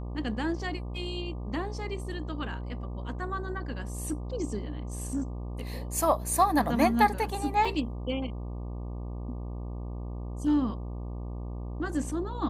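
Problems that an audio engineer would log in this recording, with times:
mains buzz 60 Hz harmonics 20 −36 dBFS
0:07.65: drop-out 3.4 ms

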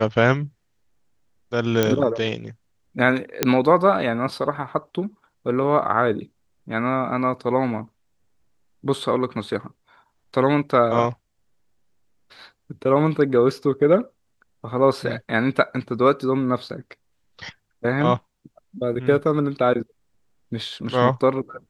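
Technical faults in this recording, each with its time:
0:01.83: click −5 dBFS
0:03.43: click −1 dBFS

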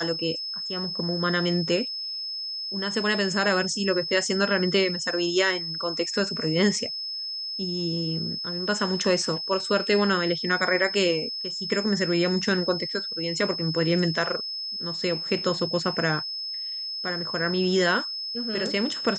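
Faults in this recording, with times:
whistle 5,200 Hz −30 dBFS

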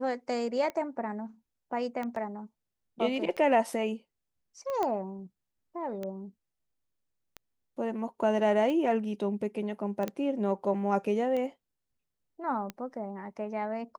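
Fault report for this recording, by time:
scratch tick 45 rpm −23 dBFS
0:02.16: drop-out 2.8 ms
0:04.83: click −18 dBFS
0:10.08: click −19 dBFS

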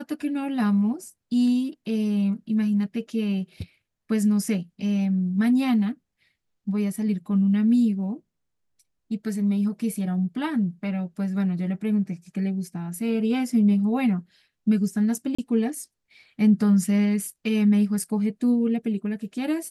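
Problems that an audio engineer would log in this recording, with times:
0:15.35–0:15.38: drop-out 35 ms

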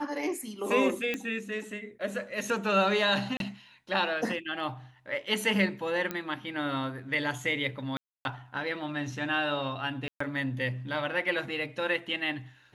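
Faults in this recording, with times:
0:01.14: click −17 dBFS
0:03.37–0:03.40: drop-out 32 ms
0:06.11: click −17 dBFS
0:07.97–0:08.25: drop-out 281 ms
0:10.08–0:10.20: drop-out 124 ms

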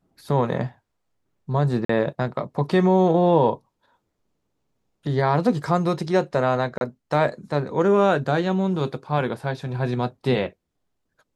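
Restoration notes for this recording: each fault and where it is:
0:01.85–0:01.89: drop-out 44 ms
0:06.78–0:06.81: drop-out 31 ms

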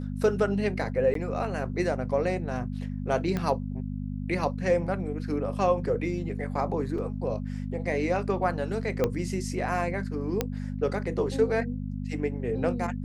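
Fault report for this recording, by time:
mains hum 50 Hz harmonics 5 −33 dBFS
0:01.14–0:01.15: drop-out 13 ms
0:03.37: click −16 dBFS
0:06.98: drop-out 3.7 ms
0:09.04: click −12 dBFS
0:10.41: click −11 dBFS

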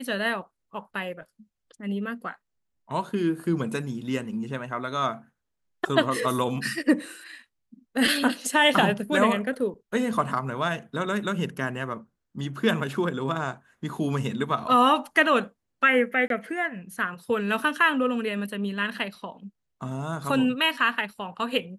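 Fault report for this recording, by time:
0:16.28–0:16.30: drop-out 22 ms

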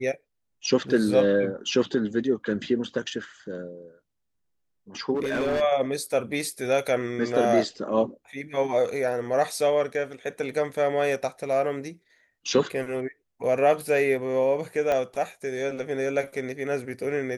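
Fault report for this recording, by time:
0:05.14–0:05.62: clipping −22.5 dBFS
0:14.92: click −14 dBFS

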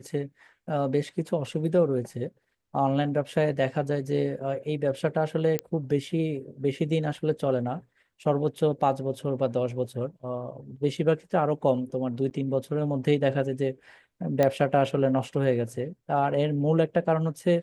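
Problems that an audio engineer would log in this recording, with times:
0:05.59: click −13 dBFS
0:12.30–0:12.31: drop-out 9.4 ms
0:14.43: click −11 dBFS

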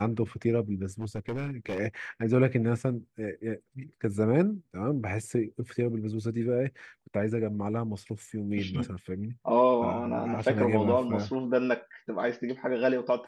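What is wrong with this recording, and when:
0:00.99–0:01.80: clipping −28.5 dBFS

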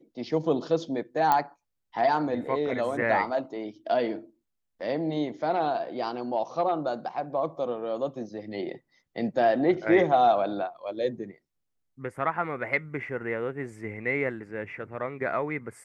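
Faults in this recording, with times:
0:01.32: click −10 dBFS

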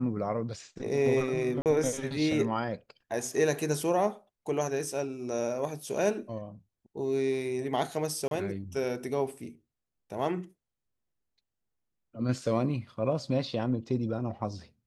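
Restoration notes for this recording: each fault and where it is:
0:01.62–0:01.66: drop-out 38 ms
0:08.28–0:08.31: drop-out 32 ms

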